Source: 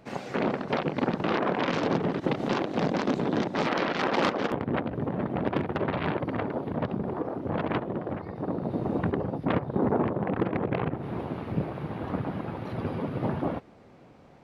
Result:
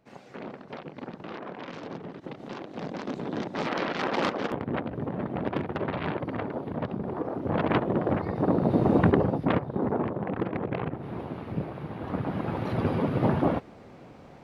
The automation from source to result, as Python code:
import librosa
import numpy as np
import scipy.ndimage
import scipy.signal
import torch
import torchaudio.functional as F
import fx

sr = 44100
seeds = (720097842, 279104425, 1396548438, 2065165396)

y = fx.gain(x, sr, db=fx.line((2.38, -12.5), (3.8, -2.0), (6.99, -2.0), (8.1, 7.0), (9.19, 7.0), (9.75, -2.5), (11.97, -2.5), (12.57, 5.0)))